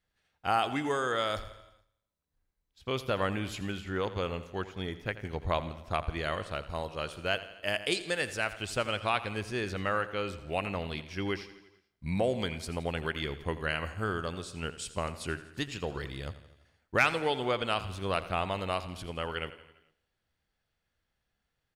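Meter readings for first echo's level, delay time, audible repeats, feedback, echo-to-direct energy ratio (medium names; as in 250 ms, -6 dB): -15.0 dB, 84 ms, 5, 58%, -12.5 dB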